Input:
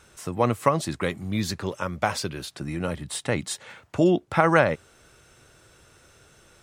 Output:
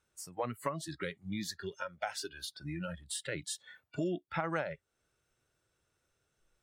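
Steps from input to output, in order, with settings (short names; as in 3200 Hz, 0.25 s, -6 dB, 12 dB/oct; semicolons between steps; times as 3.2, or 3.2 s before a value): spectral noise reduction 22 dB; compressor 2.5:1, threshold -35 dBFS, peak gain reduction 14.5 dB; gain -2.5 dB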